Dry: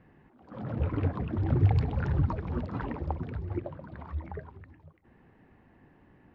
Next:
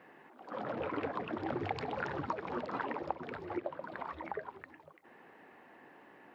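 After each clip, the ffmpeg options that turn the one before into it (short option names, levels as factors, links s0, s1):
-af "highpass=460,acompressor=threshold=0.00562:ratio=2,volume=2.51"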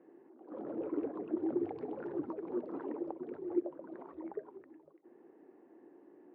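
-af "bandpass=f=340:t=q:w=4.1:csg=0,volume=2.37"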